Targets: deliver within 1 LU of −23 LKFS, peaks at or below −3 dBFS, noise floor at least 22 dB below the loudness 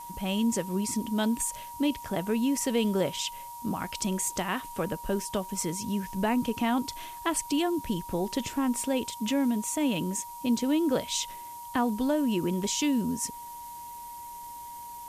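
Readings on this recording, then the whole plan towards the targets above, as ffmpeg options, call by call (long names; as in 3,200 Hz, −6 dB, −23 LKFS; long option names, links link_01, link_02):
interfering tone 950 Hz; level of the tone −40 dBFS; background noise floor −42 dBFS; target noise floor −52 dBFS; integrated loudness −29.5 LKFS; sample peak −15.0 dBFS; target loudness −23.0 LKFS
→ -af "bandreject=frequency=950:width=30"
-af "afftdn=noise_reduction=10:noise_floor=-42"
-af "volume=6.5dB"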